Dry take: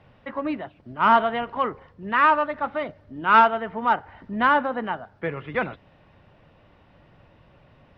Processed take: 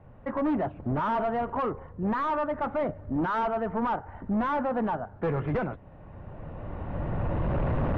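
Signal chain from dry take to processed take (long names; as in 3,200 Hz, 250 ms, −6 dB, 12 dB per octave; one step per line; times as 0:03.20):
camcorder AGC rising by 15 dB per second
low-shelf EQ 75 Hz +10 dB
gain into a clipping stage and back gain 23.5 dB
low-pass filter 1,200 Hz 12 dB per octave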